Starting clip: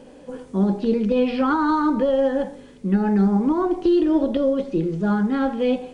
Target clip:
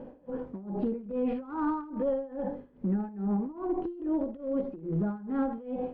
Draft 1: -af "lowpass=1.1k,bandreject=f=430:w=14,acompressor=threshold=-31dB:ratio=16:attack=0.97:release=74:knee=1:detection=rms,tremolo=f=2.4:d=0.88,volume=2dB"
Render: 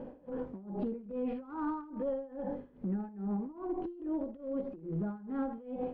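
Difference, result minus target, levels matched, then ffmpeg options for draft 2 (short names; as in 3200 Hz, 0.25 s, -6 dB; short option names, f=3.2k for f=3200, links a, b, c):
compressor: peak gain reduction +5.5 dB
-af "lowpass=1.1k,bandreject=f=430:w=14,acompressor=threshold=-25dB:ratio=16:attack=0.97:release=74:knee=1:detection=rms,tremolo=f=2.4:d=0.88,volume=2dB"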